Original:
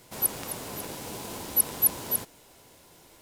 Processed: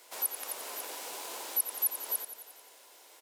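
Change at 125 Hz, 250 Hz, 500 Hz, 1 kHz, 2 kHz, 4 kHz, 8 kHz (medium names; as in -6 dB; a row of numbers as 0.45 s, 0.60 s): under -35 dB, -17.0 dB, -7.0 dB, -3.5 dB, -2.5 dB, -2.5 dB, -6.0 dB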